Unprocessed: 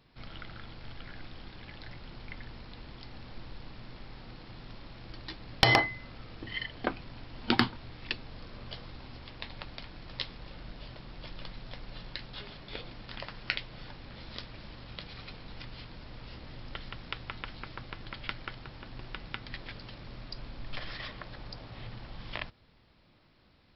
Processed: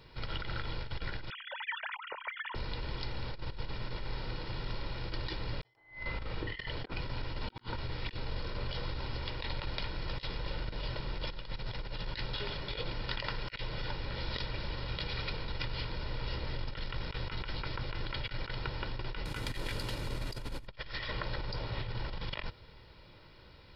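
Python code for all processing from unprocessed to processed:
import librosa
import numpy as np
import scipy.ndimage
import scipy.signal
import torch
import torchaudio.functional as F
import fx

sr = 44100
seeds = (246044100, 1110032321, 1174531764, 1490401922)

y = fx.chain(x, sr, fx.sine_speech(),
    fx.high_shelf(hz=2200.0, db=-6.5), at=(1.3, 2.55))
y = fx.chain(y, sr, fx.air_absorb(metres=110.0),
    fx.room_flutter(wall_m=6.4, rt60_s=0.43), at=(5.77, 6.55))
y = fx.chain(y, sr, fx.cvsd(bps=64000),
    fx.peak_eq(hz=270.0, db=5.0, octaves=0.58), at=(19.25, 20.67))
y = y + 0.51 * np.pad(y, (int(2.1 * sr / 1000.0), 0))[:len(y)]
y = fx.over_compress(y, sr, threshold_db=-41.0, ratio=-0.5)
y = F.gain(torch.from_numpy(y), 4.0).numpy()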